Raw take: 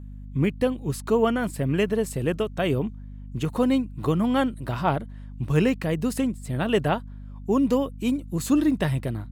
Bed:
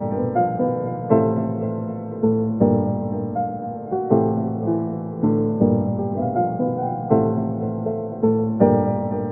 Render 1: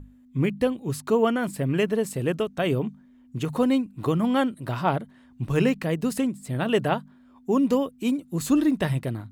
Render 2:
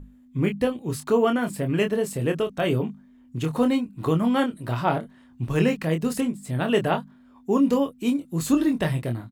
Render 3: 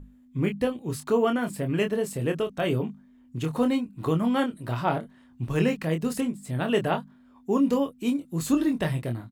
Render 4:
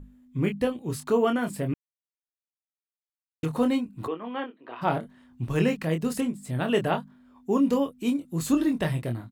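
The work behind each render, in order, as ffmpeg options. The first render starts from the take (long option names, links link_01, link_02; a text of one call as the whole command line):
ffmpeg -i in.wav -af "bandreject=frequency=50:width_type=h:width=6,bandreject=frequency=100:width_type=h:width=6,bandreject=frequency=150:width_type=h:width=6,bandreject=frequency=200:width_type=h:width=6" out.wav
ffmpeg -i in.wav -filter_complex "[0:a]asplit=2[link_01][link_02];[link_02]adelay=25,volume=-6dB[link_03];[link_01][link_03]amix=inputs=2:normalize=0" out.wav
ffmpeg -i in.wav -af "volume=-2.5dB" out.wav
ffmpeg -i in.wav -filter_complex "[0:a]asplit=3[link_01][link_02][link_03];[link_01]afade=type=out:start_time=4.06:duration=0.02[link_04];[link_02]highpass=frequency=350:width=0.5412,highpass=frequency=350:width=1.3066,equalizer=frequency=370:width_type=q:width=4:gain=-4,equalizer=frequency=600:width_type=q:width=4:gain=-10,equalizer=frequency=880:width_type=q:width=4:gain=-4,equalizer=frequency=1400:width_type=q:width=4:gain=-8,equalizer=frequency=2100:width_type=q:width=4:gain=-5,lowpass=frequency=2700:width=0.5412,lowpass=frequency=2700:width=1.3066,afade=type=in:start_time=4.06:duration=0.02,afade=type=out:start_time=4.81:duration=0.02[link_05];[link_03]afade=type=in:start_time=4.81:duration=0.02[link_06];[link_04][link_05][link_06]amix=inputs=3:normalize=0,asplit=3[link_07][link_08][link_09];[link_07]atrim=end=1.74,asetpts=PTS-STARTPTS,afade=type=out:start_time=1.736:duration=0.004:curve=hsin[link_10];[link_08]atrim=start=1.74:end=3.43,asetpts=PTS-STARTPTS,volume=0[link_11];[link_09]atrim=start=3.43,asetpts=PTS-STARTPTS,afade=type=in:duration=0.004:curve=hsin[link_12];[link_10][link_11][link_12]concat=n=3:v=0:a=1" out.wav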